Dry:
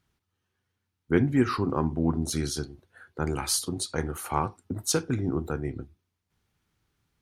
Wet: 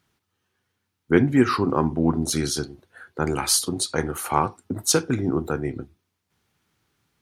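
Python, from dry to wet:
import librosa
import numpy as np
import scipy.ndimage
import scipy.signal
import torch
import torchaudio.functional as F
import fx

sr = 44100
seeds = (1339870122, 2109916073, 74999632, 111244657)

y = fx.highpass(x, sr, hz=160.0, slope=6)
y = y * librosa.db_to_amplitude(6.5)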